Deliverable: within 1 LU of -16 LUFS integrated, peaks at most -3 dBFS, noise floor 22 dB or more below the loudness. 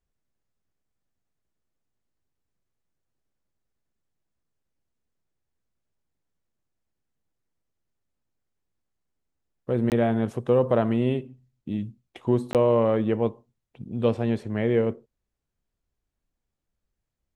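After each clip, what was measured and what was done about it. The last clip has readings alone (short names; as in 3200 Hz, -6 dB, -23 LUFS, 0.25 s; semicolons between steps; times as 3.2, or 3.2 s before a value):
dropouts 2; longest dropout 18 ms; loudness -24.5 LUFS; peak -8.5 dBFS; loudness target -16.0 LUFS
-> interpolate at 9.9/12.53, 18 ms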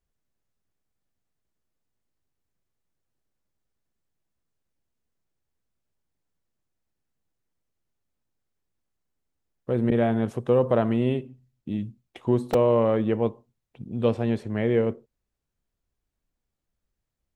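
dropouts 0; loudness -24.5 LUFS; peak -8.5 dBFS; loudness target -16.0 LUFS
-> gain +8.5 dB; limiter -3 dBFS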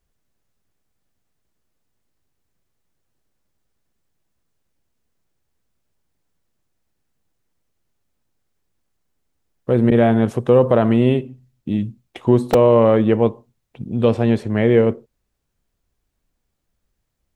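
loudness -16.5 LUFS; peak -3.0 dBFS; noise floor -74 dBFS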